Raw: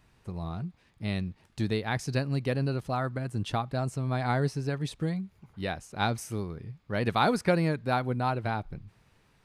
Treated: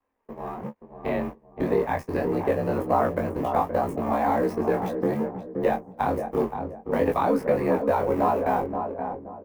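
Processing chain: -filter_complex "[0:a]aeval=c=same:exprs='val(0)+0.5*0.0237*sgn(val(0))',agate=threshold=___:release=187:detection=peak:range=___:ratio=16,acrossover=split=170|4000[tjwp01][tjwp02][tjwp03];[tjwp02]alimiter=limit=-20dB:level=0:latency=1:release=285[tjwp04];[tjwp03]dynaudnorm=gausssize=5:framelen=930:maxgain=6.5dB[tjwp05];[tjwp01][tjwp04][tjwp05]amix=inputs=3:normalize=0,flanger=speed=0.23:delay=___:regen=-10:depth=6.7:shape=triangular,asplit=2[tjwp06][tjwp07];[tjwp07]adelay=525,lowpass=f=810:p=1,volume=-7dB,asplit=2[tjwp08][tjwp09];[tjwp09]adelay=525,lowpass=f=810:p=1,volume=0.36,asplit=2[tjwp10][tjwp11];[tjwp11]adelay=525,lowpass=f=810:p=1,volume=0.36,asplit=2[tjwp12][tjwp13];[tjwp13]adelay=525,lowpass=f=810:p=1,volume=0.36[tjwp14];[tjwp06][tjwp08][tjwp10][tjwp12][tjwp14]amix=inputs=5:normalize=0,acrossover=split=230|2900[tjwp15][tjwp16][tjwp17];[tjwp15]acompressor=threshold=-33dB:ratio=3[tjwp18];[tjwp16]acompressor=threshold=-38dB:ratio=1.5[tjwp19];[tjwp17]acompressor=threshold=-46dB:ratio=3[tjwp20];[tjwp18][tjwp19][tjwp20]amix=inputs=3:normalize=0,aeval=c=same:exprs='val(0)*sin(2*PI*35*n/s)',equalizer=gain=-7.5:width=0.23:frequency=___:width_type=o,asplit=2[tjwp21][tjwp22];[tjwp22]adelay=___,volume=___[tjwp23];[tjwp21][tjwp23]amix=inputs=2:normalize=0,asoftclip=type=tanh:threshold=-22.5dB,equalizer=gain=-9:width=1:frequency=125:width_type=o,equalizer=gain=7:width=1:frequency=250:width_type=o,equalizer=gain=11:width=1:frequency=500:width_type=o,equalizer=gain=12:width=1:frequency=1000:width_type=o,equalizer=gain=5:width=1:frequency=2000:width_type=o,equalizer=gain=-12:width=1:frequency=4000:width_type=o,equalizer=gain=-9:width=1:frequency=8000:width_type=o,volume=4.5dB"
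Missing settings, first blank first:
-30dB, -46dB, 3.6, 1400, 22, -3.5dB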